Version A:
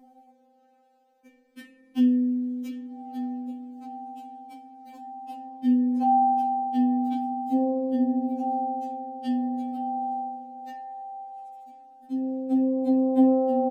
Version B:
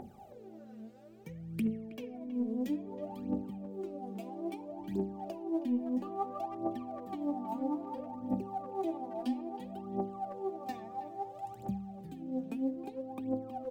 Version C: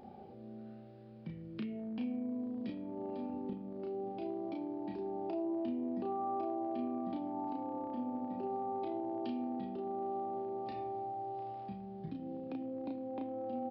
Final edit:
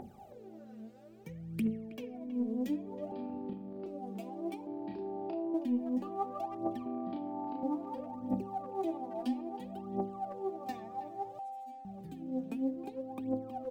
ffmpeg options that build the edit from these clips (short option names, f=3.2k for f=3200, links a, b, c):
-filter_complex "[2:a]asplit=3[a][b][c];[1:a]asplit=5[d][e][f][g][h];[d]atrim=end=3.122[i];[a]atrim=start=3.118:end=3.862[j];[e]atrim=start=3.858:end=4.672[k];[b]atrim=start=4.668:end=5.542[l];[f]atrim=start=5.538:end=6.862[m];[c]atrim=start=6.858:end=7.632[n];[g]atrim=start=7.628:end=11.392[o];[0:a]atrim=start=11.388:end=11.852[p];[h]atrim=start=11.848[q];[i][j]acrossfade=d=0.004:c1=hsin:c2=hsin[r];[r][k]acrossfade=d=0.004:c1=hsin:c2=hsin[s];[s][l]acrossfade=d=0.004:c1=hsin:c2=hsin[t];[t][m]acrossfade=d=0.004:c1=hsin:c2=hsin[u];[u][n]acrossfade=d=0.004:c1=hsin:c2=hsin[v];[v][o]acrossfade=d=0.004:c1=hsin:c2=hsin[w];[w][p]acrossfade=d=0.004:c1=hsin:c2=hsin[x];[x][q]acrossfade=d=0.004:c1=hsin:c2=hsin"